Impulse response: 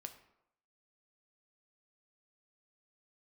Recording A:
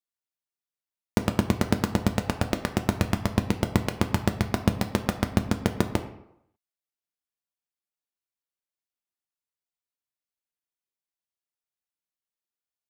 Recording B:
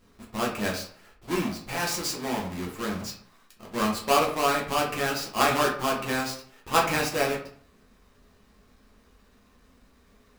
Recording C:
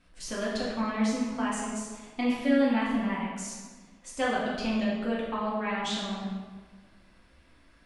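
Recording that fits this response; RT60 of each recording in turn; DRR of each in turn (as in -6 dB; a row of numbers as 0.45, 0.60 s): A; 0.80, 0.55, 1.5 s; 6.0, -3.5, -6.5 dB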